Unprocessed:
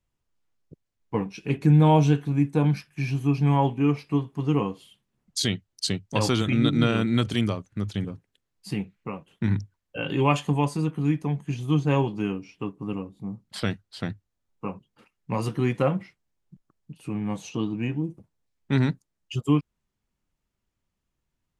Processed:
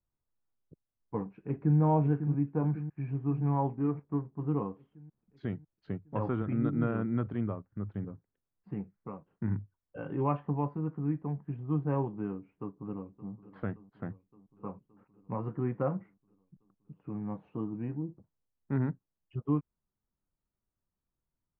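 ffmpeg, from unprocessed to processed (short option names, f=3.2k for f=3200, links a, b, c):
-filter_complex "[0:a]asplit=2[a][b];[b]afade=t=in:st=1.37:d=0.01,afade=t=out:st=1.79:d=0.01,aecho=0:1:550|1100|1650|2200|2750|3300|3850|4400|4950:0.375837|0.244294|0.158791|0.103214|0.0670893|0.0436081|0.0283452|0.0184244|0.0119759[c];[a][c]amix=inputs=2:normalize=0,asettb=1/sr,asplit=3[d][e][f];[d]atrim=end=3.754[g];[e]atrim=start=3.75:end=4.38,asetpts=PTS-STARTPTS,afade=t=in:d=0.004:c=qsin,afade=t=out:st=0.626:d=0.004:c=qsin,adynamicsmooth=sensitivity=7:basefreq=660[h];[f]atrim=start=4.376[i];[g][h]acrossfade=d=0.004:c1=hsin:c2=qsin[j];[j][i]acrossfade=d=0.004:c1=qsin:c2=hsin,asplit=2[k][l];[l]afade=t=in:st=12.28:d=0.01,afade=t=out:st=13.32:d=0.01,aecho=0:1:570|1140|1710|2280|2850|3420|3990|4560:0.141254|0.0988776|0.0692143|0.04845|0.033915|0.0237405|0.0166184|0.0116329[m];[k][m]amix=inputs=2:normalize=0,lowpass=f=1.5k:w=0.5412,lowpass=f=1.5k:w=1.3066,volume=-8dB"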